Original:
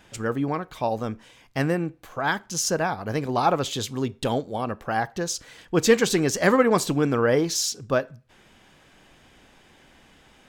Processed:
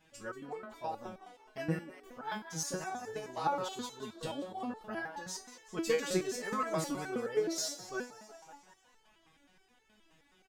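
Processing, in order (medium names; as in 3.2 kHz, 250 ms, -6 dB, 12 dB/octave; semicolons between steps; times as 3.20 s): frequency-shifting echo 186 ms, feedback 61%, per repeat +81 Hz, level -13 dB; resonator arpeggio 9.5 Hz 160–440 Hz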